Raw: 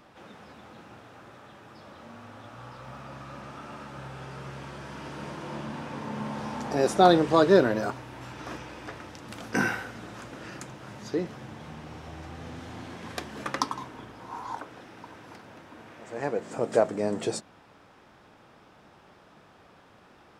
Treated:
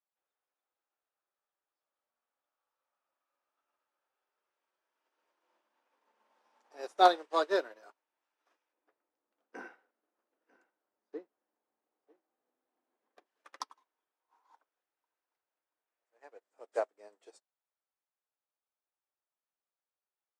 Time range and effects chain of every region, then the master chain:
8.73–13.26 tilt -4.5 dB/oct + echo 0.946 s -10 dB
whole clip: Bessel high-pass 550 Hz, order 6; upward expander 2.5:1, over -45 dBFS

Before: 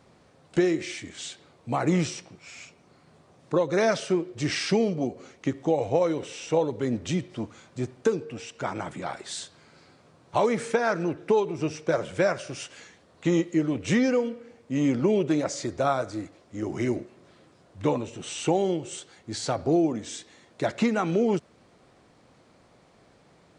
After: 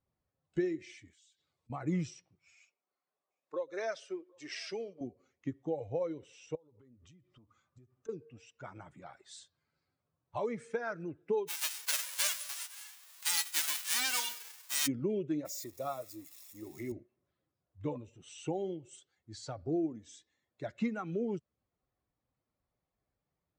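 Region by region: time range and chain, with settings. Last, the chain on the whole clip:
1.13–1.7 compressor 10:1, threshold -52 dBFS + high shelf 2500 Hz +11.5 dB
2.55–5.01 HPF 390 Hz + echo 0.755 s -21.5 dB
6.55–8.09 bell 1200 Hz +8 dB 0.29 oct + compressor 16:1, threshold -38 dBFS
11.47–14.86 spectral whitening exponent 0.1 + HPF 670 Hz + fast leveller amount 50%
15.45–16.92 switching spikes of -23.5 dBFS + notch comb 1500 Hz
whole clip: per-bin expansion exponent 1.5; dynamic EQ 880 Hz, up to -5 dB, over -42 dBFS, Q 1.2; gain -7.5 dB

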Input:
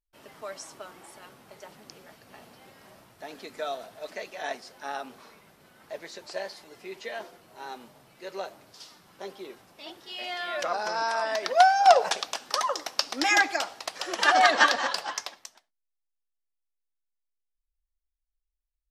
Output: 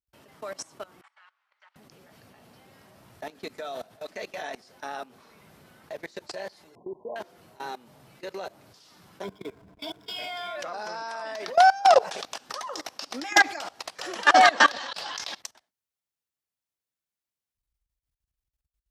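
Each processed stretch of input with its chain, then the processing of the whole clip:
1.01–1.76 HPF 1200 Hz 24 dB/oct + tape spacing loss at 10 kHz 35 dB
6.75–7.16 brick-wall FIR low-pass 1100 Hz + low shelf 130 Hz -8.5 dB
9.23–10.56 ripple EQ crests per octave 1.7, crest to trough 17 dB + backlash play -44.5 dBFS + mismatched tape noise reduction decoder only
14.72–15.41 bell 3900 Hz +9.5 dB 1.3 oct + negative-ratio compressor -31 dBFS, ratio -0.5
whole clip: level quantiser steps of 21 dB; HPF 67 Hz; low shelf 150 Hz +10 dB; gain +6.5 dB

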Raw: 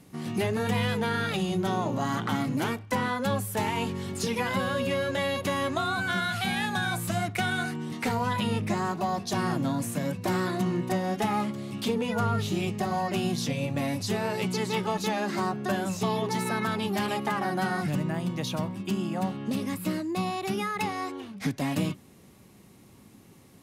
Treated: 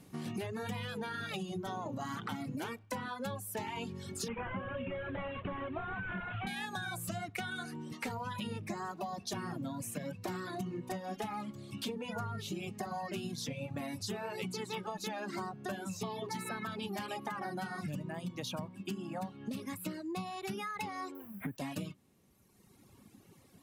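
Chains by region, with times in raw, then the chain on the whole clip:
4.28–6.47 delta modulation 16 kbps, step -34.5 dBFS + low shelf 65 Hz +11.5 dB
21.15–21.57 requantised 8-bit, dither triangular + Butterworth band-stop 5400 Hz, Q 0.53
whole clip: notch 2000 Hz, Q 29; reverb removal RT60 1.6 s; compressor, threshold -33 dBFS; gain -3 dB

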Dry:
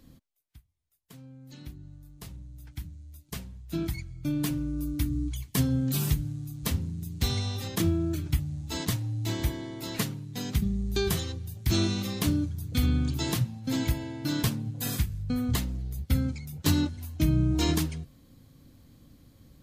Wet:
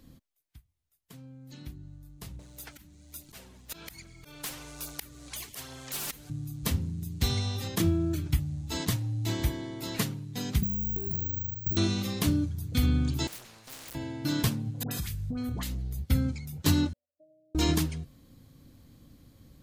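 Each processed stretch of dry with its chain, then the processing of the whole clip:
2.39–6.3 auto swell 0.477 s + phaser 1.2 Hz, delay 4 ms, feedback 40% + spectral compressor 4:1
10.63–11.77 compressor, threshold -27 dBFS + band-pass 110 Hz, Q 0.77 + careless resampling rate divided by 2×, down filtered, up zero stuff
13.27–13.95 minimum comb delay 0.45 ms + overloaded stage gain 30 dB + spectral compressor 4:1
14.83–15.75 dispersion highs, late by 81 ms, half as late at 1000 Hz + compressor 10:1, threshold -29 dBFS
16.93–17.55 spectral contrast raised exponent 1.6 + Butterworth band-pass 580 Hz, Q 7.4
whole clip: dry

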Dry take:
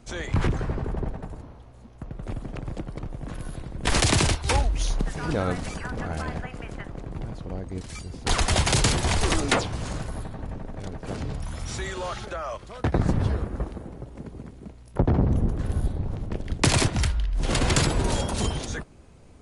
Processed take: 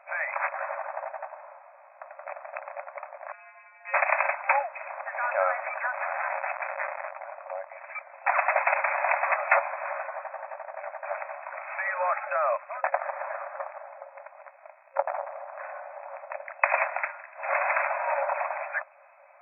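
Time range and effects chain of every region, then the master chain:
3.32–3.94 bell 2500 Hz +14 dB 1.8 oct + compressor 4:1, threshold -24 dBFS + metallic resonator 170 Hz, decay 0.59 s, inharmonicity 0.002
5.93–7.11 Schmitt trigger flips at -48 dBFS + notch 2700 Hz, Q 13 + doubler 18 ms -11.5 dB
whole clip: compressor, threshold -21 dBFS; FFT band-pass 540–2600 Hz; gain +7.5 dB

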